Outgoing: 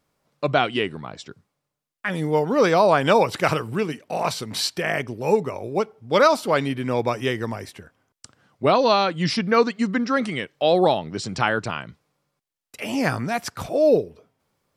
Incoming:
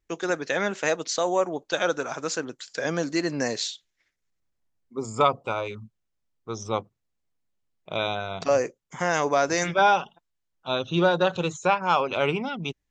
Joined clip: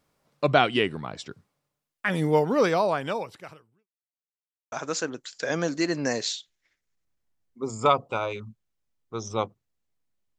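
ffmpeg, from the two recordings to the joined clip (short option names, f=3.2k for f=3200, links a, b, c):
-filter_complex "[0:a]apad=whole_dur=10.38,atrim=end=10.38,asplit=2[a][b];[a]atrim=end=3.89,asetpts=PTS-STARTPTS,afade=t=out:st=2.31:d=1.58:c=qua[c];[b]atrim=start=3.89:end=4.72,asetpts=PTS-STARTPTS,volume=0[d];[1:a]atrim=start=2.07:end=7.73,asetpts=PTS-STARTPTS,afade=t=in:d=0.004:c=hsin[e];[c][d][e]concat=n=3:v=0:a=1"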